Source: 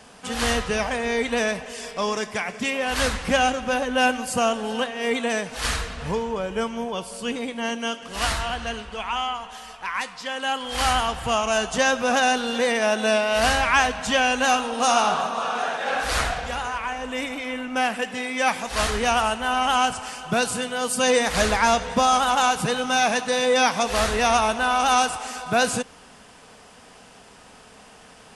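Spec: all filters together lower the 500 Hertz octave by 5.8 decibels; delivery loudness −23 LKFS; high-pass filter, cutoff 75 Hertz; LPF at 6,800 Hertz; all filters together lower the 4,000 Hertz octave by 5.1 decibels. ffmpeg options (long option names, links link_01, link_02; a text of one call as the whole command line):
ffmpeg -i in.wav -af "highpass=75,lowpass=6800,equalizer=frequency=500:width_type=o:gain=-7,equalizer=frequency=4000:width_type=o:gain=-7,volume=3dB" out.wav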